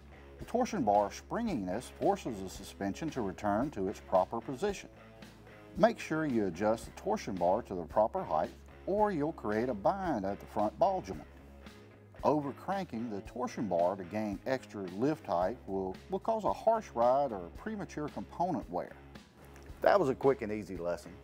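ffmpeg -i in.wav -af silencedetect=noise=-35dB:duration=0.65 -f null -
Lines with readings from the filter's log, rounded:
silence_start: 4.85
silence_end: 5.77 | silence_duration: 0.92
silence_start: 11.16
silence_end: 12.23 | silence_duration: 1.07
silence_start: 18.86
silence_end: 19.83 | silence_duration: 0.97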